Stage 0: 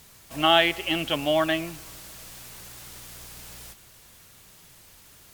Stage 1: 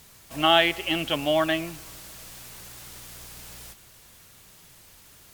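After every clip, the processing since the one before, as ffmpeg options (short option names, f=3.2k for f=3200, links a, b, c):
-af anull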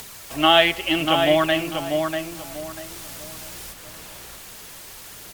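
-filter_complex "[0:a]aphaser=in_gain=1:out_gain=1:delay=4.9:decay=0.3:speed=0.76:type=triangular,asplit=2[a][b];[b]adelay=642,lowpass=f=2k:p=1,volume=-4.5dB,asplit=2[c][d];[d]adelay=642,lowpass=f=2k:p=1,volume=0.28,asplit=2[e][f];[f]adelay=642,lowpass=f=2k:p=1,volume=0.28,asplit=2[g][h];[h]adelay=642,lowpass=f=2k:p=1,volume=0.28[i];[a][c][e][g][i]amix=inputs=5:normalize=0,acrossover=split=270[j][k];[k]acompressor=mode=upward:threshold=-35dB:ratio=2.5[l];[j][l]amix=inputs=2:normalize=0,volume=3.5dB"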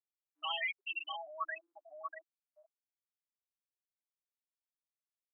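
-af "volume=19.5dB,asoftclip=hard,volume=-19.5dB,afftfilt=real='re*gte(hypot(re,im),0.251)':imag='im*gte(hypot(re,im),0.251)':win_size=1024:overlap=0.75,asuperpass=centerf=2400:order=8:qfactor=0.52,volume=-6dB"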